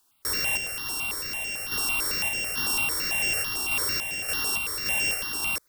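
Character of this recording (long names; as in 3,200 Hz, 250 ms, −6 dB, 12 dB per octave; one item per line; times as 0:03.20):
a buzz of ramps at a fixed pitch in blocks of 16 samples
sample-and-hold tremolo
a quantiser's noise floor 12 bits, dither triangular
notches that jump at a steady rate 9 Hz 560–4,100 Hz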